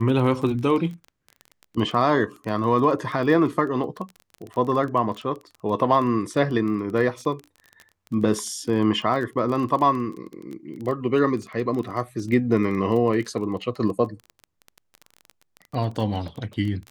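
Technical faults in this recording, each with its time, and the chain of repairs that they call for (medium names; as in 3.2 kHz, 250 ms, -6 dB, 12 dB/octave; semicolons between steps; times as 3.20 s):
crackle 22 per s -30 dBFS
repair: de-click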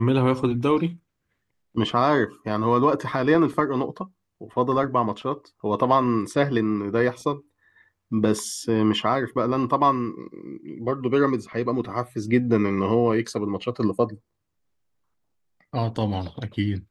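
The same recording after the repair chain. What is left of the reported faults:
nothing left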